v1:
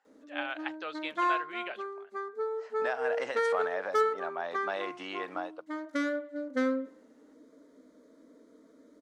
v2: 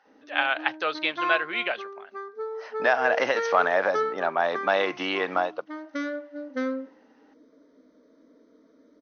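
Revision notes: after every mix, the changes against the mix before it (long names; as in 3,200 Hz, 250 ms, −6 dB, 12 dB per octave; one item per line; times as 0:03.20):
speech +12.0 dB
master: add linear-phase brick-wall low-pass 6,400 Hz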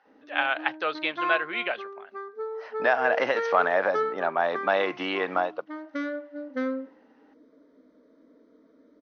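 master: add high-frequency loss of the air 140 metres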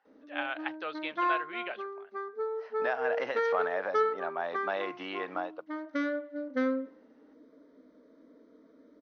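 speech −9.5 dB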